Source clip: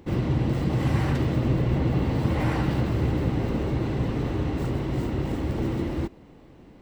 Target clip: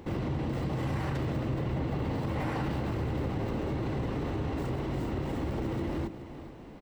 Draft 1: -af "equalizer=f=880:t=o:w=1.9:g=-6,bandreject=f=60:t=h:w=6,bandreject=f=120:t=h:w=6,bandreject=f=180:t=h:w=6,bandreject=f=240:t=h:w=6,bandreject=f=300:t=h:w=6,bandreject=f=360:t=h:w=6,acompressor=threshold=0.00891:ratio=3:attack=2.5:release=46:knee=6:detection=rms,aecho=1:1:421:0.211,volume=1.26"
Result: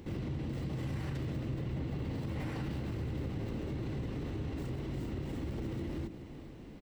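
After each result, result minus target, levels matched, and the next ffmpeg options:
1 kHz band -6.5 dB; compression: peak gain reduction +4.5 dB
-af "equalizer=f=880:t=o:w=1.9:g=3,bandreject=f=60:t=h:w=6,bandreject=f=120:t=h:w=6,bandreject=f=180:t=h:w=6,bandreject=f=240:t=h:w=6,bandreject=f=300:t=h:w=6,bandreject=f=360:t=h:w=6,acompressor=threshold=0.00891:ratio=3:attack=2.5:release=46:knee=6:detection=rms,aecho=1:1:421:0.211,volume=1.26"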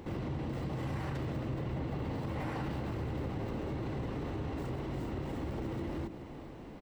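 compression: peak gain reduction +5 dB
-af "equalizer=f=880:t=o:w=1.9:g=3,bandreject=f=60:t=h:w=6,bandreject=f=120:t=h:w=6,bandreject=f=180:t=h:w=6,bandreject=f=240:t=h:w=6,bandreject=f=300:t=h:w=6,bandreject=f=360:t=h:w=6,acompressor=threshold=0.0211:ratio=3:attack=2.5:release=46:knee=6:detection=rms,aecho=1:1:421:0.211,volume=1.26"

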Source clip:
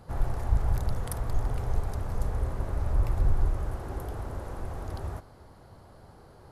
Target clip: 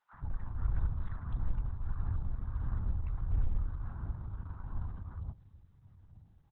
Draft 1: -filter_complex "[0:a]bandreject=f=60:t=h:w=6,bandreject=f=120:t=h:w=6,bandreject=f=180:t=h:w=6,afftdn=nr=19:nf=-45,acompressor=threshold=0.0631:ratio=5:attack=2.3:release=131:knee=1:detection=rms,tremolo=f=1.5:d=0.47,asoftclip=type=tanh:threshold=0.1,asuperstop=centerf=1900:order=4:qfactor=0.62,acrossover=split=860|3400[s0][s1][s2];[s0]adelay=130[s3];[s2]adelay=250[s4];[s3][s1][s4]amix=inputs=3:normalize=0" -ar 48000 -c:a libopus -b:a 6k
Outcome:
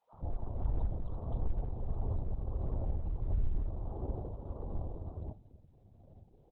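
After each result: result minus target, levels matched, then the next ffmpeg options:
saturation: distortion +21 dB; 500 Hz band +14.0 dB
-filter_complex "[0:a]bandreject=f=60:t=h:w=6,bandreject=f=120:t=h:w=6,bandreject=f=180:t=h:w=6,afftdn=nr=19:nf=-45,acompressor=threshold=0.0631:ratio=5:attack=2.3:release=131:knee=1:detection=rms,tremolo=f=1.5:d=0.47,asoftclip=type=tanh:threshold=0.355,asuperstop=centerf=1900:order=4:qfactor=0.62,acrossover=split=860|3400[s0][s1][s2];[s0]adelay=130[s3];[s2]adelay=250[s4];[s3][s1][s4]amix=inputs=3:normalize=0" -ar 48000 -c:a libopus -b:a 6k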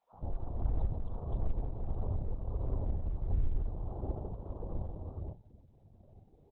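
500 Hz band +14.0 dB
-filter_complex "[0:a]bandreject=f=60:t=h:w=6,bandreject=f=120:t=h:w=6,bandreject=f=180:t=h:w=6,afftdn=nr=19:nf=-45,acompressor=threshold=0.0631:ratio=5:attack=2.3:release=131:knee=1:detection=rms,tremolo=f=1.5:d=0.47,asoftclip=type=tanh:threshold=0.355,asuperstop=centerf=480:order=4:qfactor=0.62,acrossover=split=860|3400[s0][s1][s2];[s0]adelay=130[s3];[s2]adelay=250[s4];[s3][s1][s4]amix=inputs=3:normalize=0" -ar 48000 -c:a libopus -b:a 6k

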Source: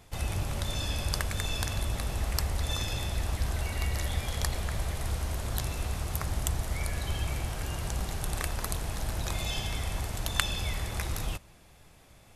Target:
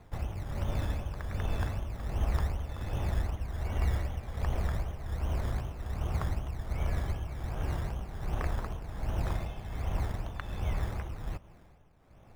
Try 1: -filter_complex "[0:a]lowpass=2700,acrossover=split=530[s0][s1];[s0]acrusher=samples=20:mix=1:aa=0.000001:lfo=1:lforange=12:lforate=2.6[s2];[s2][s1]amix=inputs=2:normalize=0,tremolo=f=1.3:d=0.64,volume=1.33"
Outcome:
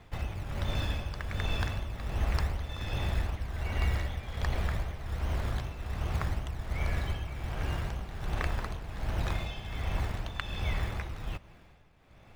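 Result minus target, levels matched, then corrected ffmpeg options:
2 kHz band +5.5 dB
-filter_complex "[0:a]lowpass=1200,acrossover=split=530[s0][s1];[s0]acrusher=samples=20:mix=1:aa=0.000001:lfo=1:lforange=12:lforate=2.6[s2];[s2][s1]amix=inputs=2:normalize=0,tremolo=f=1.3:d=0.64,volume=1.33"

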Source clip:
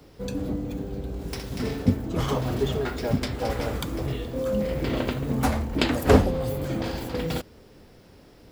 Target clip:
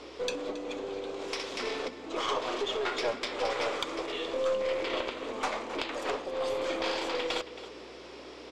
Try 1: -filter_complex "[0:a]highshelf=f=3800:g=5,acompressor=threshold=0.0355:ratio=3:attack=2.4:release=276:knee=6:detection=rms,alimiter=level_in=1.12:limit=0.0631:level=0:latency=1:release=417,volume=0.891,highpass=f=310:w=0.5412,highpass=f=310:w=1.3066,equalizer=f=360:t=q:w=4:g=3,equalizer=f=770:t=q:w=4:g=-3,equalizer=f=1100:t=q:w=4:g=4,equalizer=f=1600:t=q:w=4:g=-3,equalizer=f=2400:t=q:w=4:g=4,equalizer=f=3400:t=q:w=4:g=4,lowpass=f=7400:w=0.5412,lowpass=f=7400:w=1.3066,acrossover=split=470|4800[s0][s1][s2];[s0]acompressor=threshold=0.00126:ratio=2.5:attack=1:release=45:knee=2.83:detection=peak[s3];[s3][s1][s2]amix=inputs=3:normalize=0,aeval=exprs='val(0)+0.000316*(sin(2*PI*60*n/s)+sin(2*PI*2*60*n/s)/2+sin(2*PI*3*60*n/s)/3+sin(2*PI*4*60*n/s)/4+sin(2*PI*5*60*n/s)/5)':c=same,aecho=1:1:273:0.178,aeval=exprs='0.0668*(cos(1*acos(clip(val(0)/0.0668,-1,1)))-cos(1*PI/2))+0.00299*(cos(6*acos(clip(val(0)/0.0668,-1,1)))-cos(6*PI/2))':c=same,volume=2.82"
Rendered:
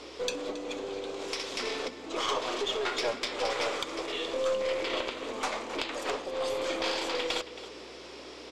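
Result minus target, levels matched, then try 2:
8 kHz band +4.0 dB
-filter_complex "[0:a]highshelf=f=3800:g=-2,acompressor=threshold=0.0355:ratio=3:attack=2.4:release=276:knee=6:detection=rms,alimiter=level_in=1.12:limit=0.0631:level=0:latency=1:release=417,volume=0.891,highpass=f=310:w=0.5412,highpass=f=310:w=1.3066,equalizer=f=360:t=q:w=4:g=3,equalizer=f=770:t=q:w=4:g=-3,equalizer=f=1100:t=q:w=4:g=4,equalizer=f=1600:t=q:w=4:g=-3,equalizer=f=2400:t=q:w=4:g=4,equalizer=f=3400:t=q:w=4:g=4,lowpass=f=7400:w=0.5412,lowpass=f=7400:w=1.3066,acrossover=split=470|4800[s0][s1][s2];[s0]acompressor=threshold=0.00126:ratio=2.5:attack=1:release=45:knee=2.83:detection=peak[s3];[s3][s1][s2]amix=inputs=3:normalize=0,aeval=exprs='val(0)+0.000316*(sin(2*PI*60*n/s)+sin(2*PI*2*60*n/s)/2+sin(2*PI*3*60*n/s)/3+sin(2*PI*4*60*n/s)/4+sin(2*PI*5*60*n/s)/5)':c=same,aecho=1:1:273:0.178,aeval=exprs='0.0668*(cos(1*acos(clip(val(0)/0.0668,-1,1)))-cos(1*PI/2))+0.00299*(cos(6*acos(clip(val(0)/0.0668,-1,1)))-cos(6*PI/2))':c=same,volume=2.82"

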